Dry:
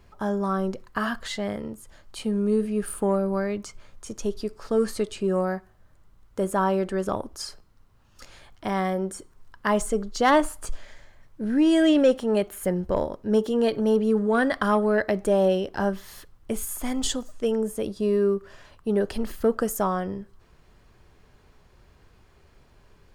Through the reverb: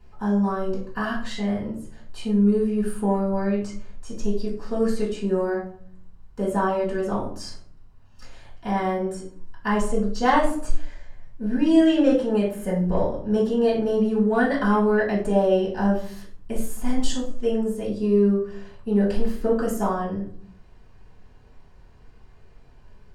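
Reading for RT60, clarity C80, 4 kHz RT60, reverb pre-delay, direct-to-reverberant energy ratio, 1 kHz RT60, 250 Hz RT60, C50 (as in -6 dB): 0.55 s, 11.0 dB, 0.30 s, 3 ms, -8.5 dB, 0.50 s, 0.90 s, 6.5 dB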